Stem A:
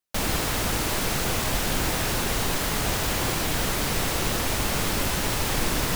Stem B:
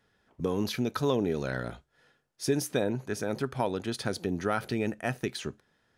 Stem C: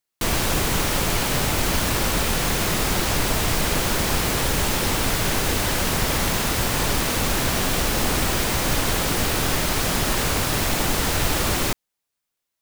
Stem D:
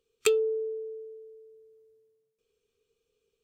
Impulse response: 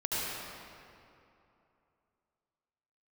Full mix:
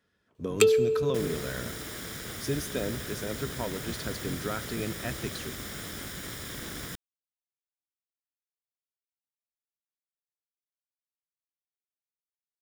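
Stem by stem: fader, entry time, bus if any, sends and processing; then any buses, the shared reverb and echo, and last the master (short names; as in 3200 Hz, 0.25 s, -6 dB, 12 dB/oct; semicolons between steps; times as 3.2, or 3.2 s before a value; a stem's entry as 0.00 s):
-11.0 dB, 1.00 s, no send, minimum comb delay 0.56 ms
-4.5 dB, 0.00 s, send -23 dB, octaver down 1 oct, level -1 dB; bell 810 Hz -11.5 dB 0.21 oct
off
+3.0 dB, 0.35 s, send -23.5 dB, dry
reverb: on, RT60 2.8 s, pre-delay 67 ms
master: HPF 42 Hz; low shelf 69 Hz -6.5 dB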